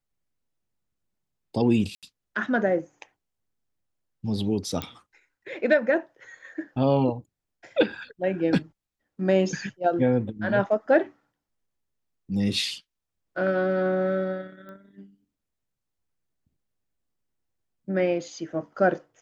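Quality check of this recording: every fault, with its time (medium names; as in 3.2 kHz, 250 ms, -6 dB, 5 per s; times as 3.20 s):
1.95–2.03 s: dropout 77 ms
4.82 s: pop -14 dBFS
14.69 s: pop -33 dBFS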